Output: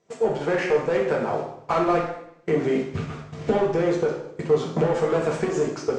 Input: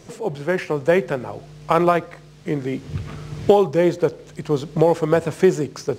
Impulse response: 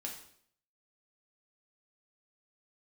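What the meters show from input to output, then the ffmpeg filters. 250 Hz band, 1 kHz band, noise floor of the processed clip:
−4.0 dB, −3.5 dB, −47 dBFS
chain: -filter_complex "[0:a]asplit=2[link_01][link_02];[link_02]highpass=frequency=720:poles=1,volume=22dB,asoftclip=type=tanh:threshold=-1.5dB[link_03];[link_01][link_03]amix=inputs=2:normalize=0,lowpass=frequency=1000:poles=1,volume=-6dB,acompressor=threshold=-15dB:ratio=6,lowpass=frequency=7400:width_type=q:width=2.2,agate=range=-26dB:threshold=-25dB:ratio=16:detection=peak[link_04];[1:a]atrim=start_sample=2205,asetrate=36603,aresample=44100[link_05];[link_04][link_05]afir=irnorm=-1:irlink=0,volume=-3dB"

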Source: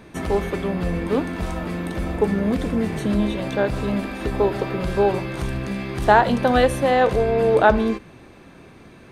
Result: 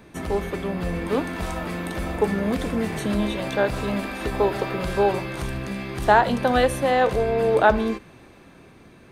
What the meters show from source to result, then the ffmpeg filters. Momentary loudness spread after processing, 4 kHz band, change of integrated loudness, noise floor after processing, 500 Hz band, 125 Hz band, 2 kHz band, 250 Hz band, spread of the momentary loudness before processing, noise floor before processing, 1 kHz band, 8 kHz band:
11 LU, 0.0 dB, −2.0 dB, −49 dBFS, −2.0 dB, −3.5 dB, −0.5 dB, −3.5 dB, 11 LU, −46 dBFS, −1.5 dB, +1.5 dB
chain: -filter_complex "[0:a]highshelf=frequency=11000:gain=5.5,acrossover=split=530[link_01][link_02];[link_02]dynaudnorm=framelen=140:gausssize=13:maxgain=5dB[link_03];[link_01][link_03]amix=inputs=2:normalize=0,volume=-3.5dB"

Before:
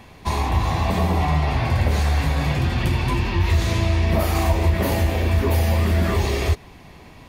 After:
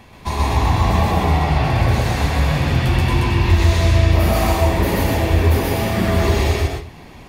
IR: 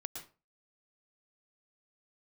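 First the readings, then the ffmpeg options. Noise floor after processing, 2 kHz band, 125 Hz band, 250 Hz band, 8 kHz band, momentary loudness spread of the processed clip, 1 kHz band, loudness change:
−40 dBFS, +4.0 dB, +3.5 dB, +4.0 dB, +4.0 dB, 4 LU, +4.5 dB, +3.5 dB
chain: -filter_complex "[0:a]asplit=2[link_01][link_02];[1:a]atrim=start_sample=2205,adelay=129[link_03];[link_02][link_03]afir=irnorm=-1:irlink=0,volume=4dB[link_04];[link_01][link_04]amix=inputs=2:normalize=0"

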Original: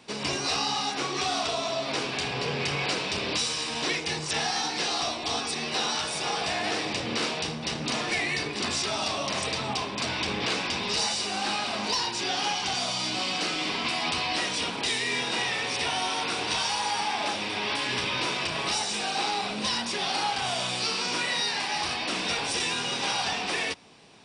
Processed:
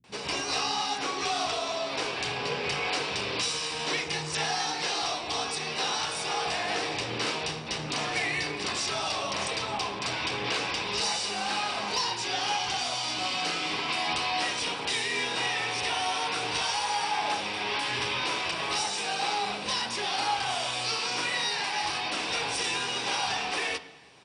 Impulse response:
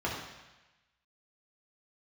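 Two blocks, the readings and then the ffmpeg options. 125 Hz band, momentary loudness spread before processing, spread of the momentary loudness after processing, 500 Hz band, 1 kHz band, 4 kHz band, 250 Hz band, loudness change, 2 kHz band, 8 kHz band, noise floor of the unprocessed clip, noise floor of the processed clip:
−3.5 dB, 2 LU, 3 LU, −1.5 dB, 0.0 dB, −1.5 dB, −5.0 dB, −1.5 dB, −1.0 dB, −2.0 dB, −34 dBFS, −36 dBFS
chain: -filter_complex "[0:a]acrossover=split=190[link_01][link_02];[link_02]adelay=40[link_03];[link_01][link_03]amix=inputs=2:normalize=0,asplit=2[link_04][link_05];[1:a]atrim=start_sample=2205,asetrate=48510,aresample=44100[link_06];[link_05][link_06]afir=irnorm=-1:irlink=0,volume=-15dB[link_07];[link_04][link_07]amix=inputs=2:normalize=0,volume=-2.5dB"

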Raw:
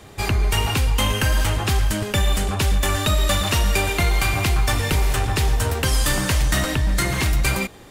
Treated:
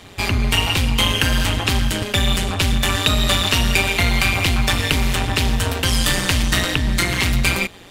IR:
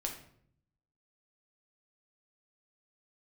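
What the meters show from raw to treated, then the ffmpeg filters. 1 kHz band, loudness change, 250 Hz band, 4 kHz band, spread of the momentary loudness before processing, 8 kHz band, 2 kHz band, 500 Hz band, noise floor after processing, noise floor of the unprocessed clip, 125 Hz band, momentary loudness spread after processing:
+1.0 dB, +2.5 dB, +4.0 dB, +6.5 dB, 2 LU, +1.5 dB, +4.5 dB, +0.5 dB, −40 dBFS, −42 dBFS, +0.5 dB, 3 LU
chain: -af "tremolo=f=180:d=0.788,equalizer=frequency=3100:width_type=o:width=1.4:gain=7.5,volume=3.5dB"

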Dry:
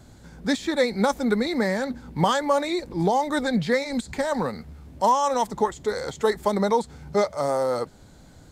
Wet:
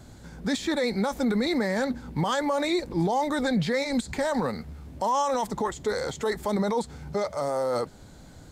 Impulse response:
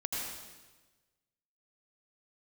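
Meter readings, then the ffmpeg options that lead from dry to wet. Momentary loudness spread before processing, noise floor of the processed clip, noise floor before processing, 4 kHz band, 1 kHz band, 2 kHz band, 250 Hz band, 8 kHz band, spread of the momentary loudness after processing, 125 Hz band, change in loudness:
7 LU, −48 dBFS, −50 dBFS, −1.5 dB, −4.5 dB, −2.5 dB, −1.0 dB, −2.0 dB, 6 LU, −1.0 dB, −3.0 dB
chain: -af "alimiter=limit=-19.5dB:level=0:latency=1:release=19,volume=1.5dB"

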